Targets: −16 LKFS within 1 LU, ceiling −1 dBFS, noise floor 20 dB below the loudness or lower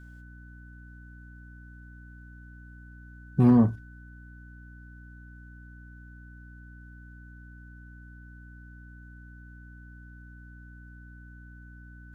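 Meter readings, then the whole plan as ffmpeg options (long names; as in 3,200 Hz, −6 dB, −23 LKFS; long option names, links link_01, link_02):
mains hum 60 Hz; hum harmonics up to 300 Hz; level of the hum −46 dBFS; interfering tone 1,500 Hz; level of the tone −53 dBFS; integrated loudness −23.0 LKFS; sample peak −9.5 dBFS; target loudness −16.0 LKFS
→ -af "bandreject=frequency=60:width_type=h:width=4,bandreject=frequency=120:width_type=h:width=4,bandreject=frequency=180:width_type=h:width=4,bandreject=frequency=240:width_type=h:width=4,bandreject=frequency=300:width_type=h:width=4"
-af "bandreject=frequency=1500:width=30"
-af "volume=7dB"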